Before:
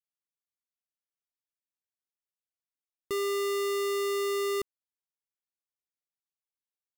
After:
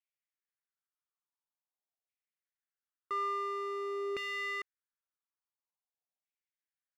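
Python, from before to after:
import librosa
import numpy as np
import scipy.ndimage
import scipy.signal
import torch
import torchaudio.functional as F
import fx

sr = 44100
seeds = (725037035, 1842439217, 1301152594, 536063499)

y = fx.dmg_tone(x, sr, hz=2400.0, level_db=-58.0, at=(3.15, 4.09), fade=0.02)
y = fx.filter_lfo_bandpass(y, sr, shape='saw_down', hz=0.48, low_hz=640.0, high_hz=2400.0, q=3.4)
y = F.gain(torch.from_numpy(y), 6.0).numpy()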